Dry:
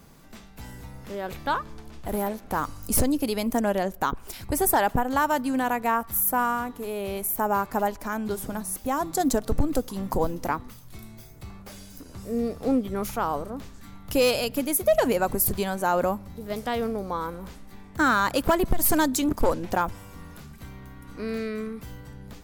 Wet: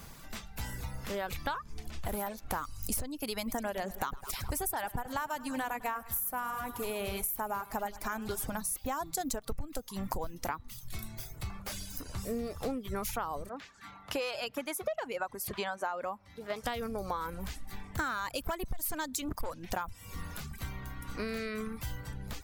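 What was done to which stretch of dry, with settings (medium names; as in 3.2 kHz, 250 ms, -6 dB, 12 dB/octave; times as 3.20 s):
3.37–8.50 s: feedback delay 103 ms, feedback 57%, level -11.5 dB
13.49–16.64 s: band-pass filter 1.1 kHz, Q 0.52
whole clip: reverb removal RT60 0.58 s; peaking EQ 300 Hz -8.5 dB 2.4 oct; compression 12:1, threshold -38 dBFS; trim +6.5 dB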